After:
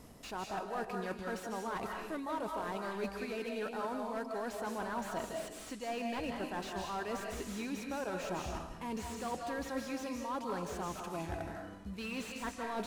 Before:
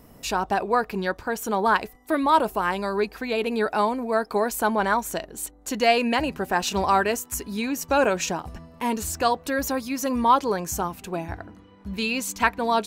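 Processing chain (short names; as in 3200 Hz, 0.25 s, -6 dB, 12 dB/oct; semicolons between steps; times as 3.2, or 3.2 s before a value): CVSD 64 kbps; reverse; compressor 8:1, threshold -33 dBFS, peak gain reduction 19.5 dB; reverse; digital reverb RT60 0.8 s, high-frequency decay 0.9×, pre-delay 0.12 s, DRR 2.5 dB; slew limiter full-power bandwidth 33 Hz; gain -3.5 dB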